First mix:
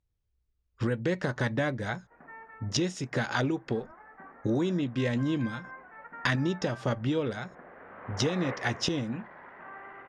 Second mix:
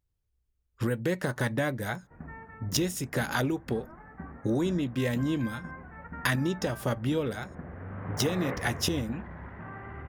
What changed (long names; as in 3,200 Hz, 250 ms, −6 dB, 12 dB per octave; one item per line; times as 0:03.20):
background: remove high-pass filter 470 Hz 12 dB per octave
master: remove low-pass filter 6,400 Hz 24 dB per octave